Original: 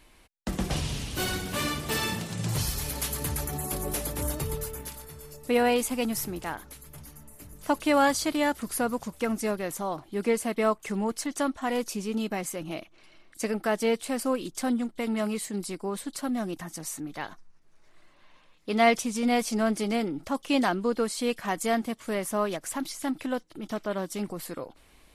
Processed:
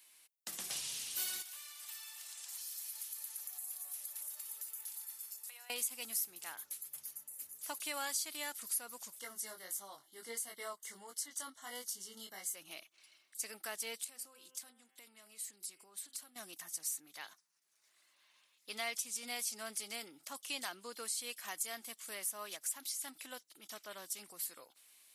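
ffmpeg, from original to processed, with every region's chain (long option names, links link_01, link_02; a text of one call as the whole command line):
ffmpeg -i in.wav -filter_complex "[0:a]asettb=1/sr,asplit=3[link_01][link_02][link_03];[link_01]atrim=end=1.424[link_04];[link_02]atrim=start=1.42:end=5.7,asetpts=PTS-STARTPTS,afade=type=in:duration=0.004:curve=qsin,afade=type=out:start_time=4.276:duration=0.004:curve=qsin,highpass=frequency=710:width=0.5412,highpass=frequency=710:width=1.3066,acompressor=threshold=-44dB:ratio=8:attack=3.2:release=140:knee=1:detection=peak,aecho=1:1:286:0.299,atrim=end_sample=188748[link_05];[link_03]atrim=start=5.696[link_06];[link_04][link_05]acrossfade=duration=0.004:curve1=hsin:curve2=qsin[link_07];[link_07][link_06]acrossfade=duration=0.004:curve1=qsin:curve2=hsin,asettb=1/sr,asplit=3[link_08][link_09][link_10];[link_08]atrim=end=9.194[link_11];[link_09]atrim=start=9.19:end=12.55,asetpts=PTS-STARTPTS,afade=type=in:duration=0.004:curve=qsin,afade=type=out:start_time=3.356:duration=0.004:curve=qsin,asuperstop=centerf=2500:order=12:qfactor=4.2,flanger=delay=20:depth=2.4:speed=1.5[link_12];[link_10]atrim=start=12.546[link_13];[link_11][link_12]acrossfade=duration=0.004:curve1=hsin:curve2=qsin[link_14];[link_14][link_13]acrossfade=duration=0.004:curve1=qsin:curve2=hsin,asettb=1/sr,asplit=3[link_15][link_16][link_17];[link_15]atrim=end=14.044[link_18];[link_16]atrim=start=14.04:end=16.36,asetpts=PTS-STARTPTS,afade=type=in:duration=0.004:curve=qsin,afade=type=out:start_time=2.316:duration=0.004:curve=qsin,bandreject=frequency=129.3:width_type=h:width=4,bandreject=frequency=258.6:width_type=h:width=4,bandreject=frequency=387.9:width_type=h:width=4,bandreject=frequency=517.2:width_type=h:width=4,bandreject=frequency=646.5:width_type=h:width=4,bandreject=frequency=775.8:width_type=h:width=4,bandreject=frequency=905.1:width_type=h:width=4,bandreject=frequency=1034.4:width_type=h:width=4,bandreject=frequency=1163.7:width_type=h:width=4,bandreject=frequency=1293:width_type=h:width=4,bandreject=frequency=1422.3:width_type=h:width=4,bandreject=frequency=1551.6:width_type=h:width=4,bandreject=frequency=1680.9:width_type=h:width=4,bandreject=frequency=1810.2:width_type=h:width=4,bandreject=frequency=1939.5:width_type=h:width=4,bandreject=frequency=2068.8:width_type=h:width=4,bandreject=frequency=2198.1:width_type=h:width=4,bandreject=frequency=2327.4:width_type=h:width=4,bandreject=frequency=2456.7:width_type=h:width=4,bandreject=frequency=2586:width_type=h:width=4,bandreject=frequency=2715.3:width_type=h:width=4,bandreject=frequency=2844.6:width_type=h:width=4,bandreject=frequency=2973.9:width_type=h:width=4,bandreject=frequency=3103.2:width_type=h:width=4,bandreject=frequency=3232.5:width_type=h:width=4,bandreject=frequency=3361.8:width_type=h:width=4,acompressor=threshold=-39dB:ratio=16:attack=3.2:release=140:knee=1:detection=peak[link_19];[link_17]atrim=start=16.356[link_20];[link_18][link_19]acrossfade=duration=0.004:curve1=hsin:curve2=qsin[link_21];[link_21][link_20]acrossfade=duration=0.004:curve1=qsin:curve2=hsin,highpass=52,aderivative,acompressor=threshold=-40dB:ratio=2,volume=1.5dB" out.wav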